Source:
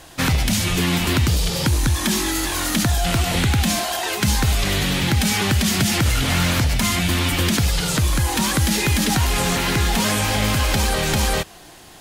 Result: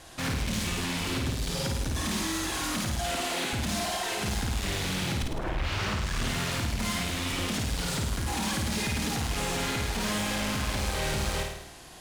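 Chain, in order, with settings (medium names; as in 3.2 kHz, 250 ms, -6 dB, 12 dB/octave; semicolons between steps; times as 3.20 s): CVSD coder 64 kbps; 2.99–3.53 s: high-pass 260 Hz 24 dB/octave; 5.22 s: tape start 1.12 s; overload inside the chain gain 23.5 dB; flutter echo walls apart 9.1 m, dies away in 0.79 s; trim -6.5 dB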